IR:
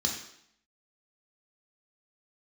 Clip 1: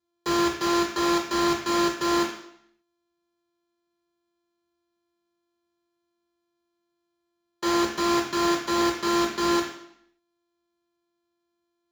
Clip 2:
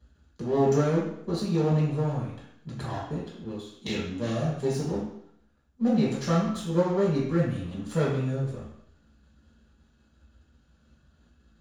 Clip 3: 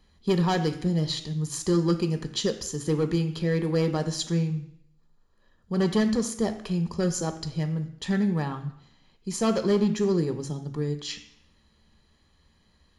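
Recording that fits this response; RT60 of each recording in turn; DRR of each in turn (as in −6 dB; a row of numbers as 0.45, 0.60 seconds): 1; 0.70, 0.70, 0.70 seconds; −0.5, −7.0, 7.5 decibels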